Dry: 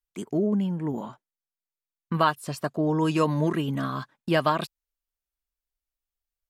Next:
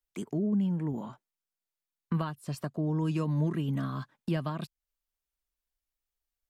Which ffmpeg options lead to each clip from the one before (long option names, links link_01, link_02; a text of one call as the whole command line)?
ffmpeg -i in.wav -filter_complex "[0:a]acrossover=split=230[link_01][link_02];[link_02]acompressor=threshold=-40dB:ratio=3[link_03];[link_01][link_03]amix=inputs=2:normalize=0" out.wav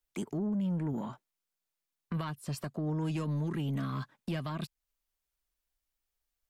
ffmpeg -i in.wav -filter_complex "[0:a]acrossover=split=1700[link_01][link_02];[link_01]alimiter=level_in=3dB:limit=-24dB:level=0:latency=1:release=129,volume=-3dB[link_03];[link_03][link_02]amix=inputs=2:normalize=0,asoftclip=type=tanh:threshold=-29dB,volume=2.5dB" out.wav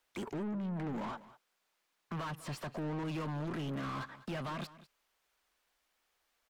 ffmpeg -i in.wav -filter_complex "[0:a]asplit=2[link_01][link_02];[link_02]highpass=frequency=720:poles=1,volume=30dB,asoftclip=type=tanh:threshold=-27dB[link_03];[link_01][link_03]amix=inputs=2:normalize=0,lowpass=frequency=1800:poles=1,volume=-6dB,aecho=1:1:198:0.133,volume=-5.5dB" out.wav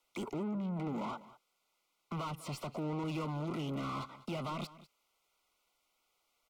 ffmpeg -i in.wav -filter_complex "[0:a]acrossover=split=100|440|3300[link_01][link_02][link_03][link_04];[link_01]aeval=exprs='max(val(0),0)':channel_layout=same[link_05];[link_05][link_02][link_03][link_04]amix=inputs=4:normalize=0,asuperstop=centerf=1700:order=12:qfactor=3.5,volume=1dB" -ar 44100 -c:a libvorbis -b:a 192k out.ogg